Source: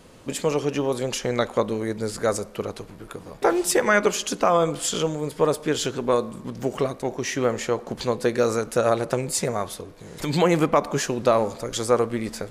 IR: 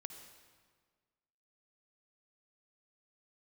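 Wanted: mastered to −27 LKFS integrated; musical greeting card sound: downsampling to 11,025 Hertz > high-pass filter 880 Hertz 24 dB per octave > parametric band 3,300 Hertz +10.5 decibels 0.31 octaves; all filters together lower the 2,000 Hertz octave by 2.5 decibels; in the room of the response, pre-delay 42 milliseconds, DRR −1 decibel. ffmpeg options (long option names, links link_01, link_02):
-filter_complex "[0:a]equalizer=frequency=2000:width_type=o:gain=-4,asplit=2[link_01][link_02];[1:a]atrim=start_sample=2205,adelay=42[link_03];[link_02][link_03]afir=irnorm=-1:irlink=0,volume=5dB[link_04];[link_01][link_04]amix=inputs=2:normalize=0,aresample=11025,aresample=44100,highpass=frequency=880:width=0.5412,highpass=frequency=880:width=1.3066,equalizer=frequency=3300:width_type=o:width=0.31:gain=10.5"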